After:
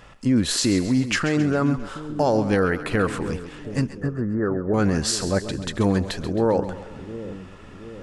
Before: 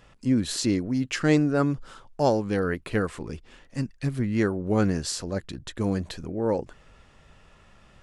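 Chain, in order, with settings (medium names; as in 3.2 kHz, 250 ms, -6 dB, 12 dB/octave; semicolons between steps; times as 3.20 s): peaking EQ 1.2 kHz +3.5 dB 1.8 oct; peak limiter -18 dBFS, peak gain reduction 11 dB; 3.89–4.74 s: rippled Chebyshev low-pass 1.8 kHz, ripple 6 dB; two-band feedback delay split 490 Hz, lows 724 ms, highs 134 ms, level -12 dB; trim +6.5 dB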